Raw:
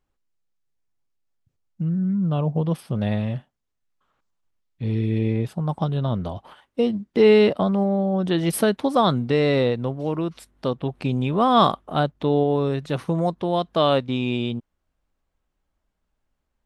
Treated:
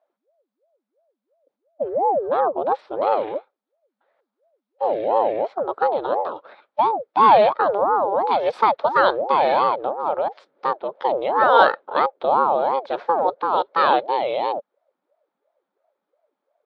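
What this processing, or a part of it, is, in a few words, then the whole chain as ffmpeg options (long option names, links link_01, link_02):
voice changer toy: -af "aeval=exprs='val(0)*sin(2*PI*440*n/s+440*0.55/2.9*sin(2*PI*2.9*n/s))':channel_layout=same,highpass=520,equalizer=frequency=560:width_type=q:width=4:gain=9,equalizer=frequency=860:width_type=q:width=4:gain=5,equalizer=frequency=1300:width_type=q:width=4:gain=3,equalizer=frequency=1900:width_type=q:width=4:gain=-3,equalizer=frequency=2800:width_type=q:width=4:gain=-7,lowpass=frequency=3900:width=0.5412,lowpass=frequency=3900:width=1.3066,volume=4dB"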